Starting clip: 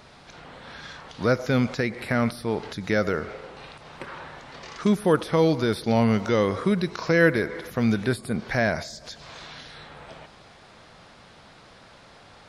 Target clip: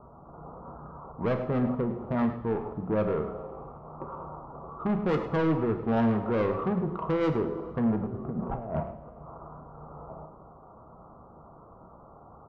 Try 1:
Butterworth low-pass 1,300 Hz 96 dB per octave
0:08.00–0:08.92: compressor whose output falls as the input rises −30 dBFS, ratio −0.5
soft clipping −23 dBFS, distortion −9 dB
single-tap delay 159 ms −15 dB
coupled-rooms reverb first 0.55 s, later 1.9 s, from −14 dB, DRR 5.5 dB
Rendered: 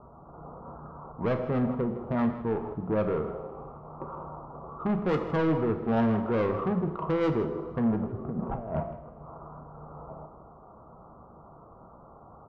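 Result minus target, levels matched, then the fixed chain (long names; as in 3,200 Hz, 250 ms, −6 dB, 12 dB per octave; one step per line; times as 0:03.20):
echo 55 ms late
Butterworth low-pass 1,300 Hz 96 dB per octave
0:08.00–0:08.92: compressor whose output falls as the input rises −30 dBFS, ratio −0.5
soft clipping −23 dBFS, distortion −9 dB
single-tap delay 104 ms −15 dB
coupled-rooms reverb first 0.55 s, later 1.9 s, from −14 dB, DRR 5.5 dB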